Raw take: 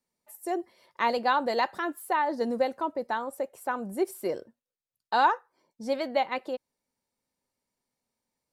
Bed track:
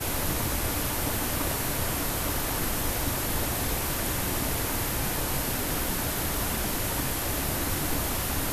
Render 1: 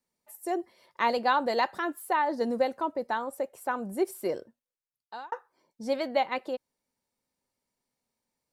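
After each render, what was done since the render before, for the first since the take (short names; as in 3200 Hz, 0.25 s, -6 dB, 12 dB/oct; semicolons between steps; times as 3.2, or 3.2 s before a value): 4.36–5.32 fade out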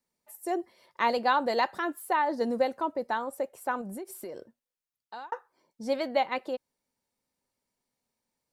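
3.81–5.29 compressor 16:1, threshold -35 dBFS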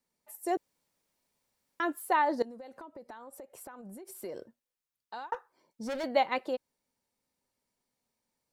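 0.57–1.8 room tone; 2.42–4.24 compressor 12:1, threshold -43 dBFS; 5.34–6.04 overloaded stage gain 32.5 dB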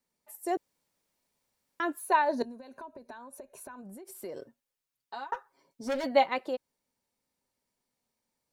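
1.99–3.83 ripple EQ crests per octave 1.5, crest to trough 10 dB; 4.36–6.26 comb 7.3 ms, depth 77%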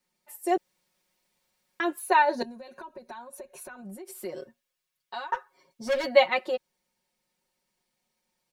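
bell 2700 Hz +5 dB 1.9 oct; comb 5.5 ms, depth 96%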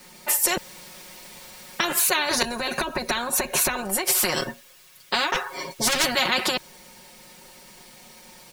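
in parallel at 0 dB: negative-ratio compressor -34 dBFS, ratio -1; on the sum: spectral compressor 4:1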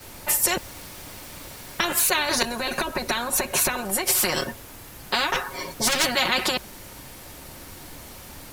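add bed track -14.5 dB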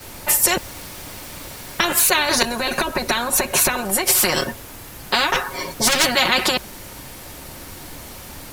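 gain +5 dB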